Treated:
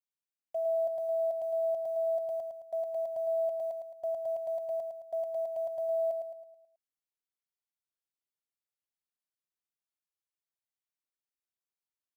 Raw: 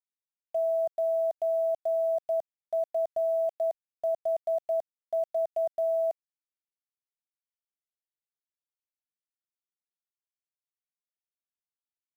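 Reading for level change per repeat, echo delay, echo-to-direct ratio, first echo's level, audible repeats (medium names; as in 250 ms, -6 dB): -6.5 dB, 108 ms, -4.5 dB, -5.5 dB, 5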